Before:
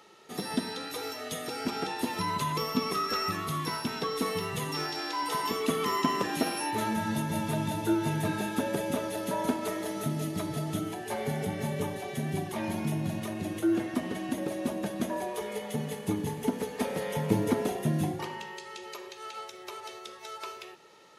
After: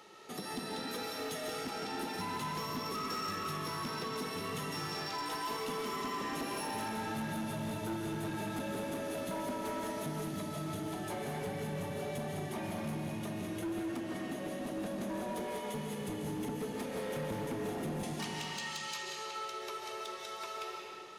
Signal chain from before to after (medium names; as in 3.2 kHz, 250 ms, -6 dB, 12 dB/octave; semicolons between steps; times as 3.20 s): 18.03–19.03 s: frequency weighting ITU-R 468; compression 2:1, threshold -43 dBFS, peak gain reduction 13 dB; reverberation RT60 2.3 s, pre-delay 100 ms, DRR 0 dB; hard clipper -33.5 dBFS, distortion -13 dB